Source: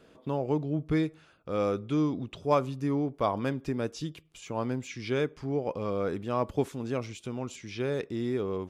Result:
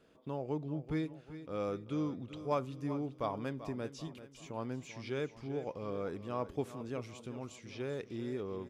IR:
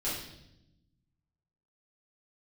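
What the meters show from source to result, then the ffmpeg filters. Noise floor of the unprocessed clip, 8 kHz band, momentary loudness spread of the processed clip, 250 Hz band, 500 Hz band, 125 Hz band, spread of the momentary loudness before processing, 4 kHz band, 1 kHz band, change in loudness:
-59 dBFS, -8.0 dB, 8 LU, -8.5 dB, -8.0 dB, -8.0 dB, 9 LU, -8.0 dB, -8.0 dB, -8.5 dB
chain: -af "aecho=1:1:388|776|1164|1552:0.224|0.101|0.0453|0.0204,volume=0.376"

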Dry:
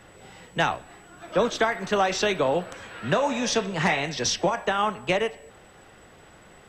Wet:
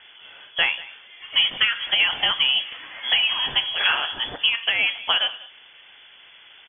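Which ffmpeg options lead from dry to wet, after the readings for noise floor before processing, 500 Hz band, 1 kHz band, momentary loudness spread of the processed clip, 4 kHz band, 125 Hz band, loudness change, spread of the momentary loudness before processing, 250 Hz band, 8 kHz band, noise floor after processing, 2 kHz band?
-51 dBFS, -16.0 dB, -6.0 dB, 13 LU, +14.0 dB, under -15 dB, +4.5 dB, 6 LU, -18.0 dB, under -40 dB, -49 dBFS, +6.0 dB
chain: -af "lowpass=f=3000:t=q:w=0.5098,lowpass=f=3000:t=q:w=0.6013,lowpass=f=3000:t=q:w=0.9,lowpass=f=3000:t=q:w=2.563,afreqshift=-3500,aecho=1:1:189:0.112,volume=1.33"

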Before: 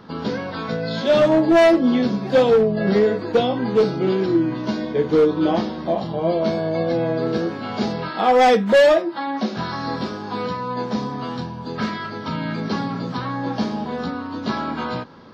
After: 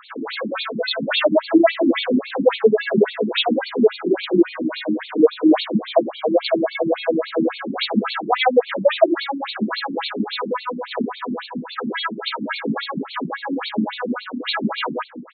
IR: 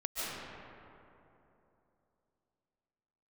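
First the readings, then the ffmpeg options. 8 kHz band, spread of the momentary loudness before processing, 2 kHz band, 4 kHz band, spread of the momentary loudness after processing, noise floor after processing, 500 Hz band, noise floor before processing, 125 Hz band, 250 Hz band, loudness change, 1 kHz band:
no reading, 13 LU, +2.0 dB, +5.5 dB, 10 LU, -38 dBFS, -1.0 dB, -31 dBFS, -7.5 dB, +0.5 dB, -0.5 dB, -2.5 dB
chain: -filter_complex "[0:a]aemphasis=mode=production:type=75kf,acrossover=split=260|950[s0][s1][s2];[s1]adelay=60[s3];[s0]adelay=170[s4];[s4][s3][s2]amix=inputs=3:normalize=0,alimiter=level_in=3.16:limit=0.891:release=50:level=0:latency=1,afftfilt=real='re*between(b*sr/1024,240*pow(3200/240,0.5+0.5*sin(2*PI*3.6*pts/sr))/1.41,240*pow(3200/240,0.5+0.5*sin(2*PI*3.6*pts/sr))*1.41)':imag='im*between(b*sr/1024,240*pow(3200/240,0.5+0.5*sin(2*PI*3.6*pts/sr))/1.41,240*pow(3200/240,0.5+0.5*sin(2*PI*3.6*pts/sr))*1.41)':win_size=1024:overlap=0.75"

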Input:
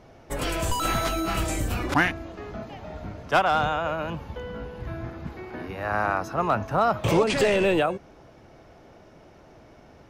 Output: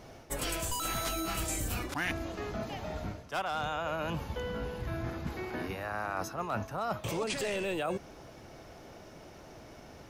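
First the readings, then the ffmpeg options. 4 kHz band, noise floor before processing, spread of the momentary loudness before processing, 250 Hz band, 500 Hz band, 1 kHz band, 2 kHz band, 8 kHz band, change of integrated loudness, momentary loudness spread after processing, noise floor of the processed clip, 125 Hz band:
-6.0 dB, -51 dBFS, 16 LU, -9.0 dB, -10.5 dB, -10.5 dB, -9.5 dB, -1.5 dB, -9.5 dB, 18 LU, -51 dBFS, -7.5 dB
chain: -af "highshelf=f=4400:g=11.5,areverse,acompressor=threshold=0.0282:ratio=8,areverse"

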